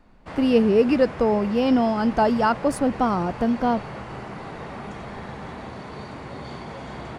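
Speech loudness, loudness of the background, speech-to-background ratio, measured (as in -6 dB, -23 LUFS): -21.0 LUFS, -36.0 LUFS, 15.0 dB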